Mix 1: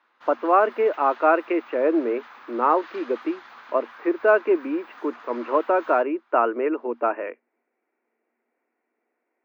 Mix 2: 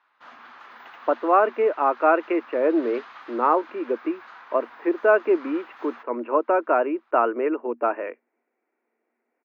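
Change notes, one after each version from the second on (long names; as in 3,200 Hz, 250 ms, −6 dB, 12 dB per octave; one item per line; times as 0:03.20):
speech: entry +0.80 s
master: add high-shelf EQ 5,500 Hz −6.5 dB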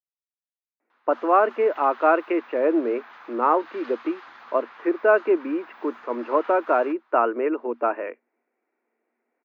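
background: entry +0.90 s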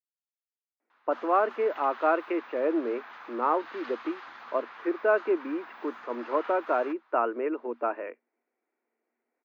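speech −6.0 dB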